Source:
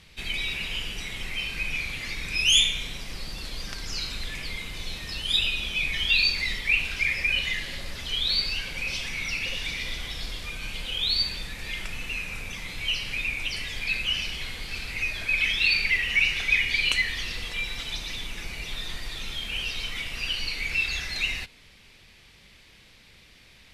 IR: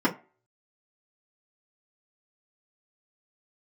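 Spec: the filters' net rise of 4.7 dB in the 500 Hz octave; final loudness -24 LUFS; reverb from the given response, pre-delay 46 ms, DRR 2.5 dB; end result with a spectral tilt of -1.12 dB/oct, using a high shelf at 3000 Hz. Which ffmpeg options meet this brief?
-filter_complex "[0:a]equalizer=f=500:t=o:g=5.5,highshelf=f=3k:g=4.5,asplit=2[a][b];[1:a]atrim=start_sample=2205,adelay=46[c];[b][c]afir=irnorm=-1:irlink=0,volume=-16dB[d];[a][d]amix=inputs=2:normalize=0,volume=-0.5dB"

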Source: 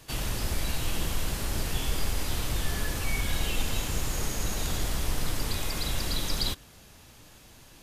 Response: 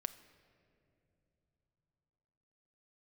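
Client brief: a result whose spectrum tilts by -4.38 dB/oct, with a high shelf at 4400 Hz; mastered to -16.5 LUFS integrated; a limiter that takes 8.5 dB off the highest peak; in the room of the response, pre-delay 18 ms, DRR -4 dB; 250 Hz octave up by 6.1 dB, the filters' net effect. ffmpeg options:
-filter_complex "[0:a]equalizer=f=250:t=o:g=8,highshelf=f=4.4k:g=-5,alimiter=limit=-23dB:level=0:latency=1,asplit=2[a][b];[1:a]atrim=start_sample=2205,adelay=18[c];[b][c]afir=irnorm=-1:irlink=0,volume=6dB[d];[a][d]amix=inputs=2:normalize=0,volume=12.5dB"

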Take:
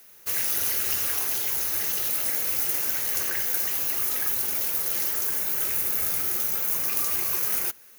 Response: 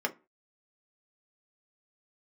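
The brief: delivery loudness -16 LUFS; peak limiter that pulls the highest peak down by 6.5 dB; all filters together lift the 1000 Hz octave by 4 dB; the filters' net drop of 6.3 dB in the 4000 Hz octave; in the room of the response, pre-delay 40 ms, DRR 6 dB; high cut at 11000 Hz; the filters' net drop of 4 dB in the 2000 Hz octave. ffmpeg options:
-filter_complex "[0:a]lowpass=11k,equalizer=f=1k:t=o:g=7.5,equalizer=f=2k:t=o:g=-6,equalizer=f=4k:t=o:g=-7.5,alimiter=limit=-22.5dB:level=0:latency=1,asplit=2[a][b];[1:a]atrim=start_sample=2205,adelay=40[c];[b][c]afir=irnorm=-1:irlink=0,volume=-13dB[d];[a][d]amix=inputs=2:normalize=0,volume=16dB"

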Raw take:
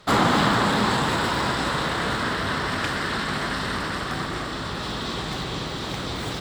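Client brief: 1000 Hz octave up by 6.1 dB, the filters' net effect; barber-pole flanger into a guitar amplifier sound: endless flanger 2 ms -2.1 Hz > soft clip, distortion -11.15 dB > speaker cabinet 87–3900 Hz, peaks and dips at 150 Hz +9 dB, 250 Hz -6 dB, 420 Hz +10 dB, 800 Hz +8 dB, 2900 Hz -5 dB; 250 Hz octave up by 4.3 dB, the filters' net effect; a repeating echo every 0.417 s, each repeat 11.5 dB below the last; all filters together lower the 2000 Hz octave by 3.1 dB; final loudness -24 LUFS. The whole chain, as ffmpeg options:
-filter_complex "[0:a]equalizer=f=250:t=o:g=5.5,equalizer=f=1k:t=o:g=4,equalizer=f=2k:t=o:g=-6,aecho=1:1:417|834|1251:0.266|0.0718|0.0194,asplit=2[a][b];[b]adelay=2,afreqshift=-2.1[c];[a][c]amix=inputs=2:normalize=1,asoftclip=threshold=-21dB,highpass=87,equalizer=f=150:t=q:w=4:g=9,equalizer=f=250:t=q:w=4:g=-6,equalizer=f=420:t=q:w=4:g=10,equalizer=f=800:t=q:w=4:g=8,equalizer=f=2.9k:t=q:w=4:g=-5,lowpass=f=3.9k:w=0.5412,lowpass=f=3.9k:w=1.3066,volume=2dB"

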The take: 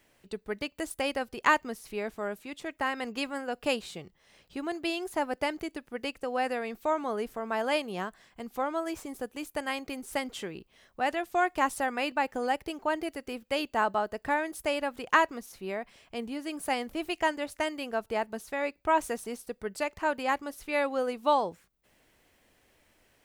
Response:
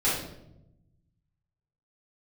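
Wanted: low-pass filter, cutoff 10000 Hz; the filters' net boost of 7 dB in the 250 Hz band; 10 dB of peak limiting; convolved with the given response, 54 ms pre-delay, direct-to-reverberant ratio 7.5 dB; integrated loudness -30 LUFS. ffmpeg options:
-filter_complex "[0:a]lowpass=10k,equalizer=f=250:t=o:g=8.5,alimiter=limit=-19.5dB:level=0:latency=1,asplit=2[a][b];[1:a]atrim=start_sample=2205,adelay=54[c];[b][c]afir=irnorm=-1:irlink=0,volume=-19.5dB[d];[a][d]amix=inputs=2:normalize=0,volume=1dB"

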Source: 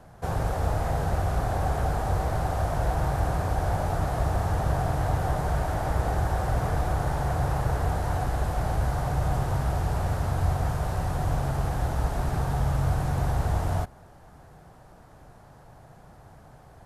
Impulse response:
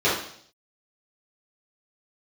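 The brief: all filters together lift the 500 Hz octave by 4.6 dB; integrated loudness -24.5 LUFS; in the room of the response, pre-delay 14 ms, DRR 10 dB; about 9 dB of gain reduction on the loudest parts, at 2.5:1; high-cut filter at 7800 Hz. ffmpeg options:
-filter_complex "[0:a]lowpass=7.8k,equalizer=f=500:t=o:g=6,acompressor=threshold=-34dB:ratio=2.5,asplit=2[a][b];[1:a]atrim=start_sample=2205,adelay=14[c];[b][c]afir=irnorm=-1:irlink=0,volume=-28dB[d];[a][d]amix=inputs=2:normalize=0,volume=10dB"

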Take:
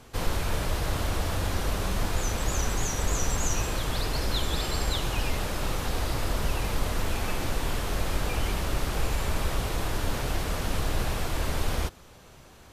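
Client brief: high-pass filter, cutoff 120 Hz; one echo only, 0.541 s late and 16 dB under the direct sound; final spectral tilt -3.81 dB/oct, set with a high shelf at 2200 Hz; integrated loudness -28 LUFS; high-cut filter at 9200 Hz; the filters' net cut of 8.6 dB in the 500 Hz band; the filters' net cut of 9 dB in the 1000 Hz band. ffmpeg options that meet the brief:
-af "highpass=120,lowpass=9.2k,equalizer=f=500:t=o:g=-8.5,equalizer=f=1k:t=o:g=-8,highshelf=f=2.2k:g=-5,aecho=1:1:541:0.158,volume=8.5dB"

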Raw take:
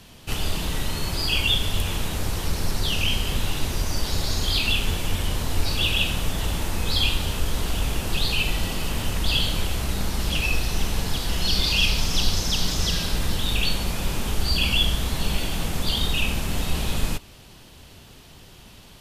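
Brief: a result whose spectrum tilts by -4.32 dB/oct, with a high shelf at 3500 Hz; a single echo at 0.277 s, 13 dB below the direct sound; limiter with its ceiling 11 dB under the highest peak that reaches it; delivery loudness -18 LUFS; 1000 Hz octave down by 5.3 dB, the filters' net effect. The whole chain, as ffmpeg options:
-af "equalizer=f=1k:t=o:g=-6.5,highshelf=f=3.5k:g=-4.5,alimiter=limit=-19.5dB:level=0:latency=1,aecho=1:1:277:0.224,volume=12.5dB"

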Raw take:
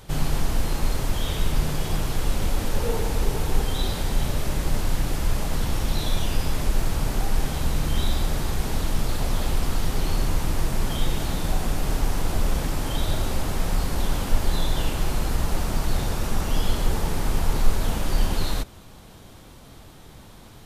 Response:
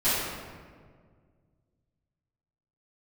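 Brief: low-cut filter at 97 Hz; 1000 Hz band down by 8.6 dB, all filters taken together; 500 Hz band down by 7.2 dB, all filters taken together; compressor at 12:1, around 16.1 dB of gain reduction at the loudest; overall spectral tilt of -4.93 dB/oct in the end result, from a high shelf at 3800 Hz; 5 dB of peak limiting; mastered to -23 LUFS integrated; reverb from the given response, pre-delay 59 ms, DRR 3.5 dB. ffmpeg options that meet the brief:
-filter_complex "[0:a]highpass=97,equalizer=f=500:t=o:g=-7,equalizer=f=1k:t=o:g=-8.5,highshelf=f=3.8k:g=-6,acompressor=threshold=-44dB:ratio=12,alimiter=level_in=15.5dB:limit=-24dB:level=0:latency=1,volume=-15.5dB,asplit=2[a][b];[1:a]atrim=start_sample=2205,adelay=59[c];[b][c]afir=irnorm=-1:irlink=0,volume=-17.5dB[d];[a][d]amix=inputs=2:normalize=0,volume=24.5dB"

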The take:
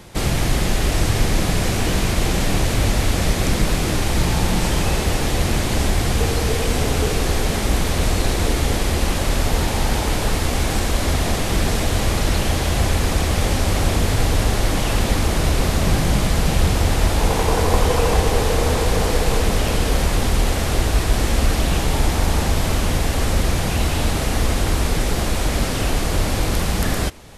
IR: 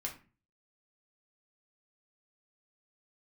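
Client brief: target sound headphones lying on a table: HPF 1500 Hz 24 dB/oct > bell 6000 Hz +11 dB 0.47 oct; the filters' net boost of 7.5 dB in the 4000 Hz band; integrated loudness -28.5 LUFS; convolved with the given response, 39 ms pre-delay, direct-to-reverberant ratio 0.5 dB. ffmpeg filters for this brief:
-filter_complex "[0:a]equalizer=f=4k:t=o:g=6,asplit=2[a][b];[1:a]atrim=start_sample=2205,adelay=39[c];[b][c]afir=irnorm=-1:irlink=0,volume=-0.5dB[d];[a][d]amix=inputs=2:normalize=0,highpass=f=1.5k:w=0.5412,highpass=f=1.5k:w=1.3066,equalizer=f=6k:t=o:w=0.47:g=11,volume=-11.5dB"

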